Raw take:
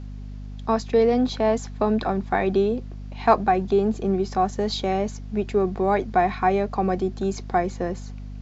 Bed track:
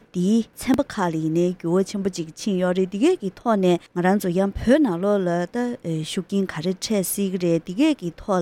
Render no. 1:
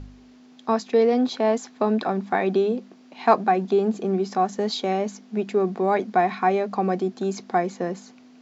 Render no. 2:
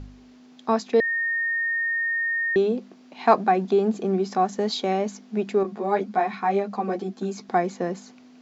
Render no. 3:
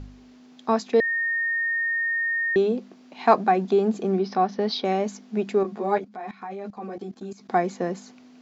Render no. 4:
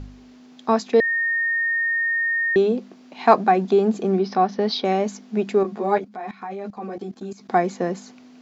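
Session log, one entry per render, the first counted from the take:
hum removal 50 Hz, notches 4
0:01.00–0:02.56: beep over 1,840 Hz −22 dBFS; 0:05.63–0:07.49: string-ensemble chorus
0:04.19–0:04.85: Butterworth low-pass 5,700 Hz 72 dB per octave; 0:05.98–0:07.49: output level in coarse steps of 17 dB
level +3 dB

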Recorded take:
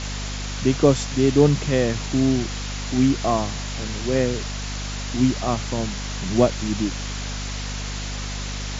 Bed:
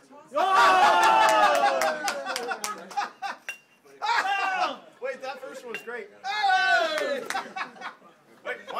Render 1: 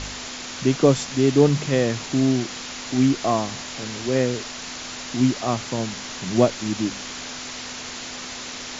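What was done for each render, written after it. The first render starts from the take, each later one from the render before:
hum removal 50 Hz, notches 4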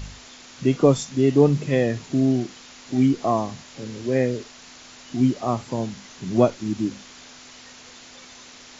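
noise reduction from a noise print 11 dB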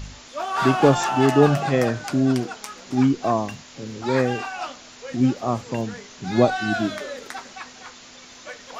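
mix in bed −5 dB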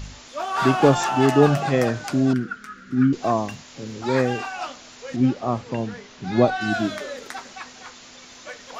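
0:02.33–0:03.13: drawn EQ curve 130 Hz 0 dB, 200 Hz +5 dB, 390 Hz −7 dB, 880 Hz −25 dB, 1,400 Hz +8 dB, 2,300 Hz −8 dB, 6,200 Hz −15 dB
0:05.16–0:06.61: high-frequency loss of the air 94 metres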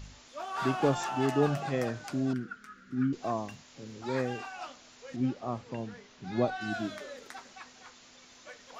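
level −11 dB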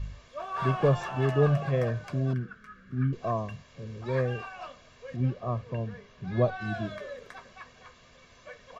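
bass and treble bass +8 dB, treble −12 dB
comb filter 1.8 ms, depth 65%

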